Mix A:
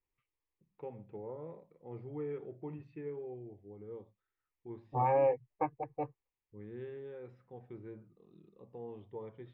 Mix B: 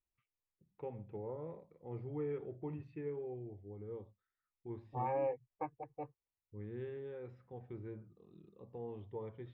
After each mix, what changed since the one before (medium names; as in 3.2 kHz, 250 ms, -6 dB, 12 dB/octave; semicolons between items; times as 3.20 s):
first voice: add peaking EQ 81 Hz +13 dB 0.59 oct; second voice -7.5 dB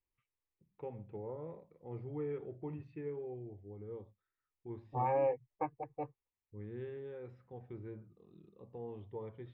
second voice +4.0 dB